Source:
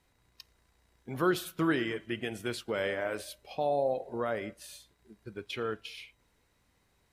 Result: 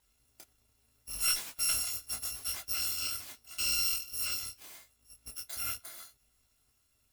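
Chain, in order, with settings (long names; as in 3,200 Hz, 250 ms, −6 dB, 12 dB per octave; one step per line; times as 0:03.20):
samples in bit-reversed order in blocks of 256 samples
asymmetric clip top −26.5 dBFS
micro pitch shift up and down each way 27 cents
level +3 dB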